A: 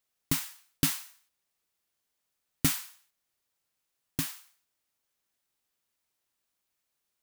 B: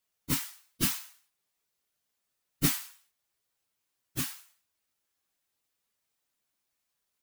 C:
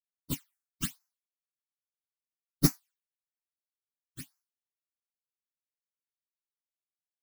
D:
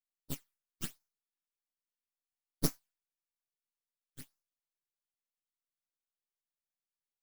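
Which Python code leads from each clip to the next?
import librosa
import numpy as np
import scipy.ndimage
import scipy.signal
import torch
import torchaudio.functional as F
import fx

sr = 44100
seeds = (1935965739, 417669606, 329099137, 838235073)

y1 = fx.phase_scramble(x, sr, seeds[0], window_ms=50)
y2 = fx.phaser_stages(y1, sr, stages=8, low_hz=110.0, high_hz=3300.0, hz=1.2, feedback_pct=25)
y2 = fx.upward_expand(y2, sr, threshold_db=-45.0, expansion=2.5)
y2 = y2 * librosa.db_to_amplitude(4.5)
y3 = np.maximum(y2, 0.0)
y3 = y3 * librosa.db_to_amplitude(-2.5)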